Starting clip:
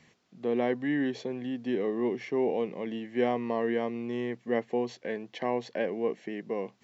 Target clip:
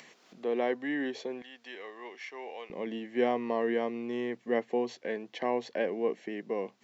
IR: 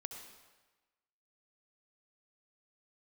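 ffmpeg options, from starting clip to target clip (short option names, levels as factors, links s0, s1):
-af "asetnsamples=n=441:p=0,asendcmd='1.42 highpass f 1100;2.7 highpass f 210',highpass=340,acompressor=mode=upward:threshold=0.00501:ratio=2.5"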